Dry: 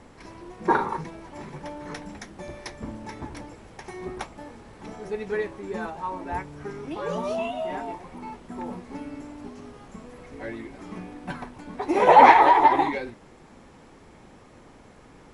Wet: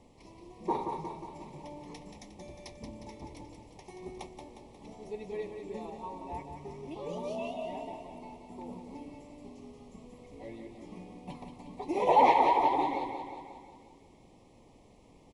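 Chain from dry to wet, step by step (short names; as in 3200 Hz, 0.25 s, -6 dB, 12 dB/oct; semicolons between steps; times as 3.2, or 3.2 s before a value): Butterworth band-stop 1500 Hz, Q 1.3; feedback echo 0.179 s, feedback 57%, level -7 dB; gain -9 dB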